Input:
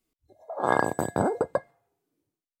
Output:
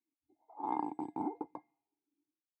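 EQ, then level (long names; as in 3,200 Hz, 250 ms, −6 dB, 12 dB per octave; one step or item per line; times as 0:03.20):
dynamic equaliser 800 Hz, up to +4 dB, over −37 dBFS, Q 2.3
formant filter u
−2.5 dB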